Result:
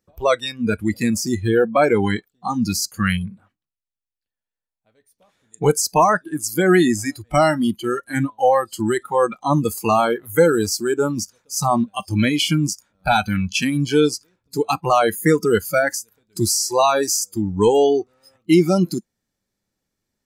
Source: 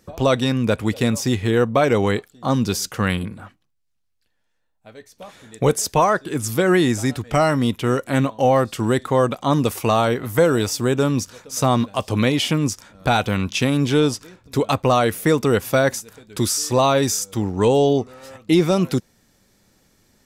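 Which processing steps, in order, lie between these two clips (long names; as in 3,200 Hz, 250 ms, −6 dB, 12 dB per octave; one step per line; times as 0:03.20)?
noise reduction from a noise print of the clip's start 22 dB
level +2.5 dB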